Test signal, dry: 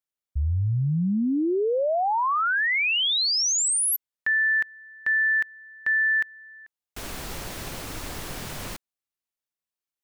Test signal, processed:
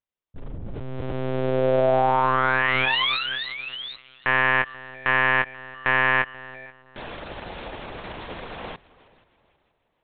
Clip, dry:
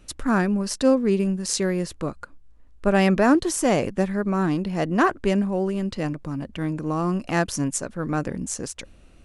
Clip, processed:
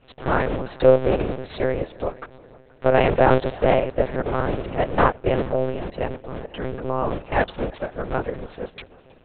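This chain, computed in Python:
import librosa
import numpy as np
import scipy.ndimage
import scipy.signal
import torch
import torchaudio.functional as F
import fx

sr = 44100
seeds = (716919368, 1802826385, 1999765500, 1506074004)

y = fx.cycle_switch(x, sr, every=3, mode='muted')
y = fx.low_shelf(y, sr, hz=260.0, db=-12.0)
y = fx.echo_heads(y, sr, ms=160, heads='second and third', feedback_pct=41, wet_db=-23)
y = fx.lpc_monotone(y, sr, seeds[0], pitch_hz=130.0, order=8)
y = fx.peak_eq(y, sr, hz=510.0, db=9.0, octaves=1.5)
y = y * librosa.db_to_amplitude(2.5)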